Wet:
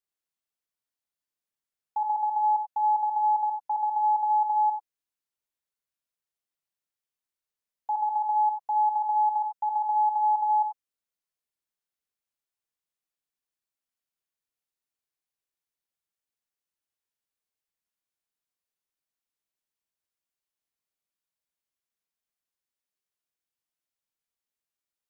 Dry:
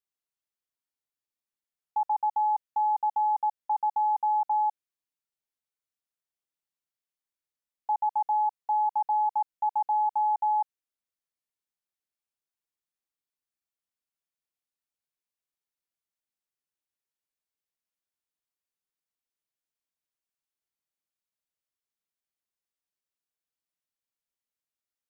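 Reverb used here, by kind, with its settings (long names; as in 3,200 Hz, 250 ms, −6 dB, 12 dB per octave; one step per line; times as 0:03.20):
reverb whose tail is shaped and stops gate 110 ms rising, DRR 5 dB
level −1 dB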